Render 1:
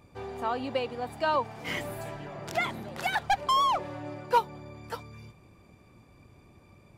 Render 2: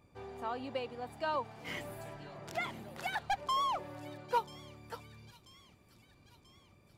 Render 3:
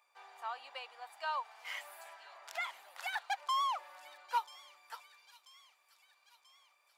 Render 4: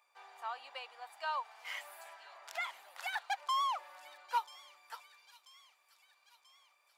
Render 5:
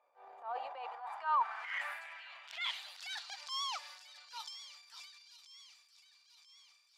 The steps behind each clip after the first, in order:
thin delay 0.986 s, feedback 56%, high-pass 3400 Hz, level -11.5 dB; gain -8 dB
HPF 820 Hz 24 dB/oct
nothing audible
band-pass sweep 530 Hz -> 5000 Hz, 0.36–3.12; transient shaper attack -9 dB, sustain +9 dB; gain +10 dB

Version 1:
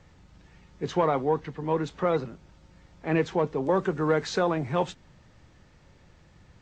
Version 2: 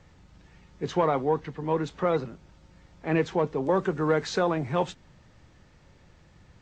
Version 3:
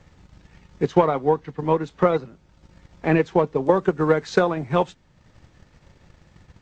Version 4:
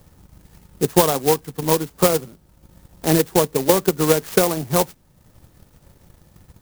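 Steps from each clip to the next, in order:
nothing audible
transient shaper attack +8 dB, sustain -6 dB; gain +2.5 dB
clock jitter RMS 0.12 ms; gain +2 dB

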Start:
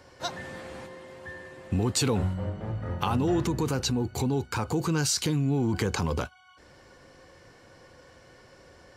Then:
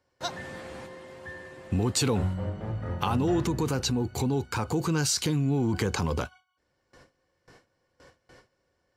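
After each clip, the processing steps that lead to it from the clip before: gate with hold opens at -42 dBFS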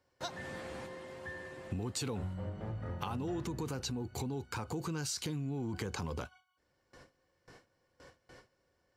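compressor 2.5:1, threshold -37 dBFS, peak gain reduction 10.5 dB; gain -2 dB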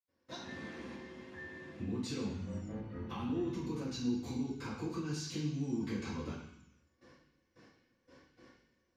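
reverb RT60 0.75 s, pre-delay 77 ms; gain +11.5 dB

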